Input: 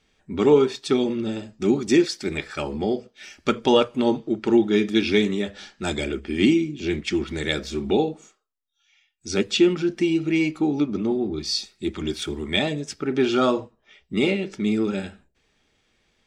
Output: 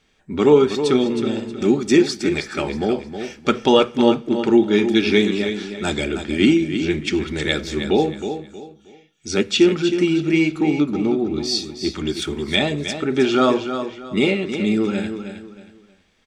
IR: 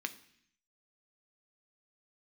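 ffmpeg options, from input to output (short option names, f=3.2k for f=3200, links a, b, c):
-filter_complex "[0:a]aecho=1:1:316|632|948:0.355|0.106|0.0319,asplit=2[a][b];[1:a]atrim=start_sample=2205,asetrate=28665,aresample=44100[c];[b][c]afir=irnorm=-1:irlink=0,volume=-15dB[d];[a][d]amix=inputs=2:normalize=0,volume=2dB"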